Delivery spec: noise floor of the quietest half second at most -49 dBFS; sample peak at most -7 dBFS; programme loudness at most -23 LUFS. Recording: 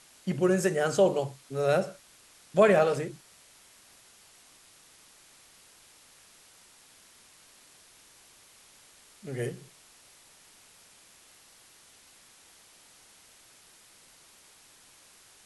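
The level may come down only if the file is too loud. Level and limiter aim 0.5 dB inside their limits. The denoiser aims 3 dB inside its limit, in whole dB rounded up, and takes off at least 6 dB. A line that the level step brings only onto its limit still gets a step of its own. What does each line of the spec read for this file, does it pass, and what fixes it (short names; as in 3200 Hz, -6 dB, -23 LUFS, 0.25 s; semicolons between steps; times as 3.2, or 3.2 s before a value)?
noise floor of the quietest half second -57 dBFS: OK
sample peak -10.0 dBFS: OK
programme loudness -27.0 LUFS: OK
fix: none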